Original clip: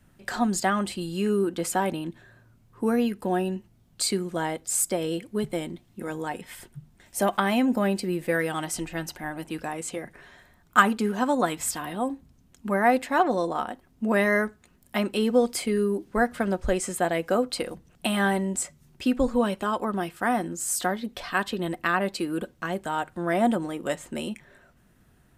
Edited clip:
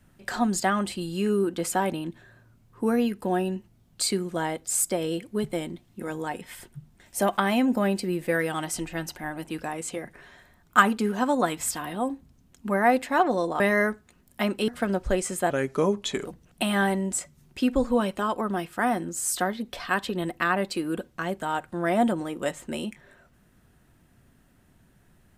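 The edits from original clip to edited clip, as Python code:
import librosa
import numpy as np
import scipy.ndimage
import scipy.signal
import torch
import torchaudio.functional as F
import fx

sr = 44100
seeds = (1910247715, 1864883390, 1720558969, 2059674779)

y = fx.edit(x, sr, fx.cut(start_s=13.6, length_s=0.55),
    fx.cut(start_s=15.23, length_s=1.03),
    fx.speed_span(start_s=17.08, length_s=0.61, speed=0.81), tone=tone)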